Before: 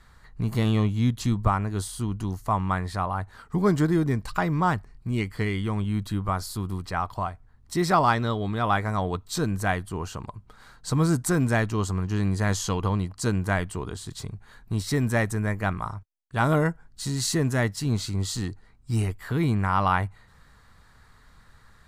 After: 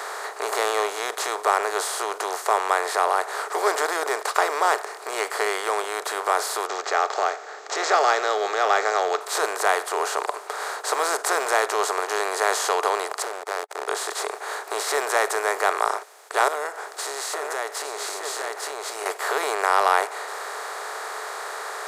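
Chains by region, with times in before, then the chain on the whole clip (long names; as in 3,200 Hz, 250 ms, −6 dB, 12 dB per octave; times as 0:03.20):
0:06.66–0:09.21: Butterworth band-reject 990 Hz, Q 4 + bad sample-rate conversion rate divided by 3×, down none, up filtered
0:13.22–0:13.88: noise gate −29 dBFS, range −9 dB + downward compressor 16 to 1, threshold −35 dBFS + slack as between gear wheels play −33.5 dBFS
0:16.48–0:19.06: single-tap delay 852 ms −10 dB + downward compressor 10 to 1, threshold −37 dBFS
whole clip: compressor on every frequency bin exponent 0.4; Chebyshev high-pass filter 420 Hz, order 5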